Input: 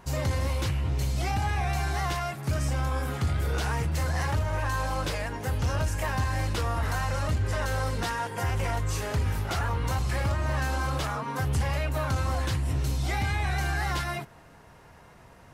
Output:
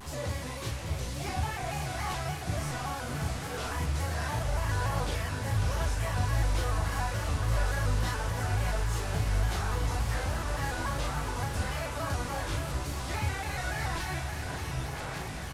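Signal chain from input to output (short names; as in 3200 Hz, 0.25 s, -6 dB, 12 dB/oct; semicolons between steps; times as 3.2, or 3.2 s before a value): delta modulation 64 kbps, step -32.5 dBFS; diffused feedback echo 0.665 s, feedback 69%, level -6 dB; chorus voices 4, 0.75 Hz, delay 15 ms, depth 4.7 ms; doubler 37 ms -3.5 dB; shaped vibrato square 3.5 Hz, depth 100 cents; gain -3.5 dB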